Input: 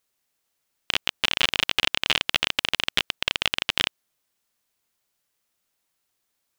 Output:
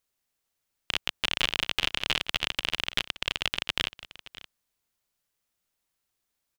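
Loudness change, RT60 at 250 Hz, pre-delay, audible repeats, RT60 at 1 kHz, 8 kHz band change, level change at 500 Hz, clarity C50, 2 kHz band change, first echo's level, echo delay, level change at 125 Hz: −5.0 dB, no reverb audible, no reverb audible, 1, no reverb audible, −5.0 dB, −4.5 dB, no reverb audible, −5.0 dB, −17.5 dB, 572 ms, −1.5 dB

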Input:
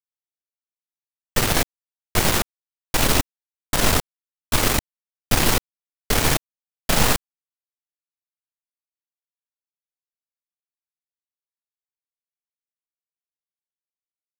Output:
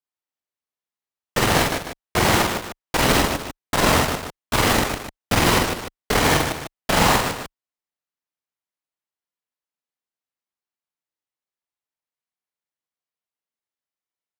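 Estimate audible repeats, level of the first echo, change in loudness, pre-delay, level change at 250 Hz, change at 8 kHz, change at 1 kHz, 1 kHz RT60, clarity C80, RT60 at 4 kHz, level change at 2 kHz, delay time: 3, −2.5 dB, +1.0 dB, no reverb audible, +4.0 dB, −1.5 dB, +6.0 dB, no reverb audible, no reverb audible, no reverb audible, +4.0 dB, 47 ms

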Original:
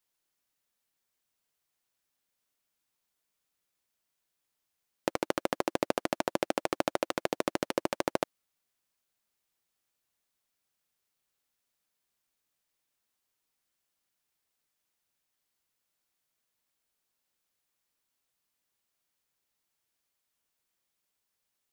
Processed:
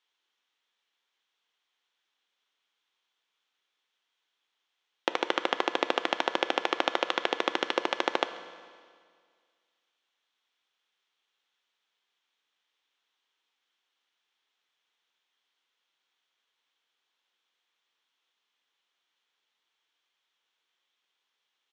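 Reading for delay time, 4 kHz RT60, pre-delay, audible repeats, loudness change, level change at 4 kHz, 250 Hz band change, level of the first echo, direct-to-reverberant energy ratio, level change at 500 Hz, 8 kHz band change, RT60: 136 ms, 1.9 s, 11 ms, 1, +3.5 dB, +10.0 dB, −1.5 dB, −22.5 dB, 9.5 dB, +0.5 dB, −4.5 dB, 1.9 s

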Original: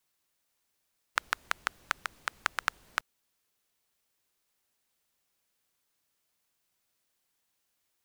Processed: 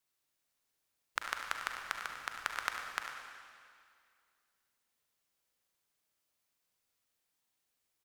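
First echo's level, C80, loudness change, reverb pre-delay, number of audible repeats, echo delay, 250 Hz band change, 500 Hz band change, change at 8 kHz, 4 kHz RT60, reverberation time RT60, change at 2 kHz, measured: −11.0 dB, 4.0 dB, −4.5 dB, 36 ms, 1, 98 ms, −3.5 dB, −3.5 dB, −4.0 dB, 2.1 s, 2.2 s, −4.0 dB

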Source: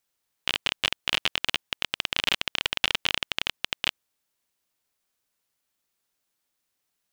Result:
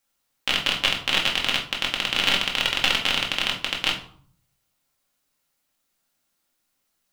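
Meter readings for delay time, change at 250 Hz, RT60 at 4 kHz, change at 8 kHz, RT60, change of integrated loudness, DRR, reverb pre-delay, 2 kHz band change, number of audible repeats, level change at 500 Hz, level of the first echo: no echo audible, +7.5 dB, 0.35 s, +4.5 dB, 0.55 s, +4.5 dB, −1.5 dB, 4 ms, +5.0 dB, no echo audible, +5.5 dB, no echo audible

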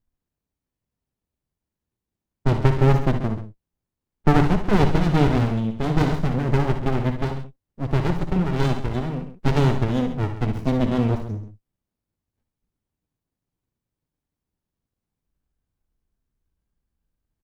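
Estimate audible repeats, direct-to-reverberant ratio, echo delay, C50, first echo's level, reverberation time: 2, no reverb audible, 59 ms, no reverb audible, −10.0 dB, no reverb audible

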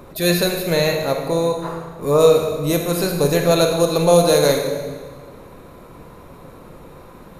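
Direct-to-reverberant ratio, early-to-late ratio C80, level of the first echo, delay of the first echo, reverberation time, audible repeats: 3.0 dB, 6.0 dB, no echo audible, no echo audible, 1.6 s, no echo audible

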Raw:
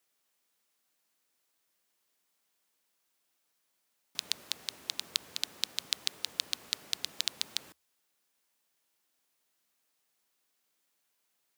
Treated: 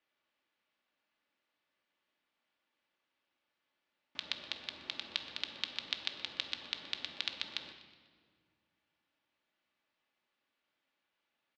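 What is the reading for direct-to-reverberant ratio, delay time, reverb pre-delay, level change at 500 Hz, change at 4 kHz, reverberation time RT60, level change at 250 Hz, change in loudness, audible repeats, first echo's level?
4.5 dB, 123 ms, 3 ms, 0.0 dB, −4.0 dB, 1.9 s, +1.0 dB, −4.5 dB, 2, −16.5 dB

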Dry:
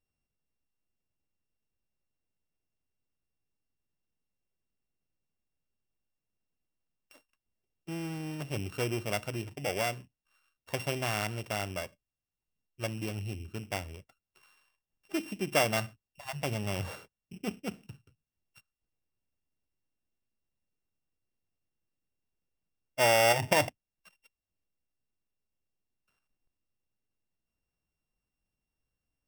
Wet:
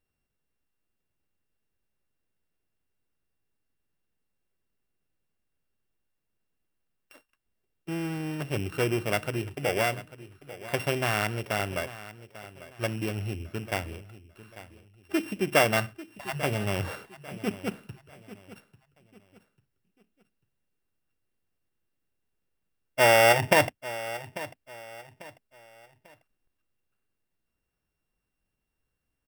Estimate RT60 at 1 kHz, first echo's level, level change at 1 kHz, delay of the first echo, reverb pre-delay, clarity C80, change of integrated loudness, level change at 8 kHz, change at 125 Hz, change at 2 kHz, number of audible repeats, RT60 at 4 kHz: no reverb audible, −16.0 dB, +5.0 dB, 844 ms, no reverb audible, no reverb audible, +4.5 dB, +2.0 dB, +4.0 dB, +6.0 dB, 2, no reverb audible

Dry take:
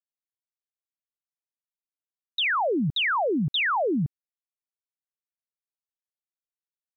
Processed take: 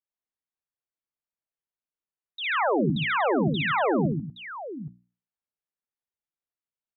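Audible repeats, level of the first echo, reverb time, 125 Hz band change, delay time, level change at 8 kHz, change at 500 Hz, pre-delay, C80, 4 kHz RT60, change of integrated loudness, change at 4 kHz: 3, −3.0 dB, no reverb audible, +2.5 dB, 59 ms, can't be measured, +2.0 dB, no reverb audible, no reverb audible, no reverb audible, 0.0 dB, −6.5 dB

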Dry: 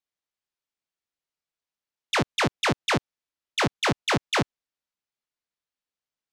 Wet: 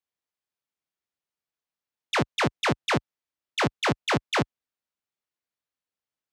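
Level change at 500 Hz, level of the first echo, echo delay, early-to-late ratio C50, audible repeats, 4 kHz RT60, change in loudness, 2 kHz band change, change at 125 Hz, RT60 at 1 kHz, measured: 0.0 dB, no echo audible, no echo audible, no reverb audible, no echo audible, no reverb audible, −1.0 dB, −1.5 dB, 0.0 dB, no reverb audible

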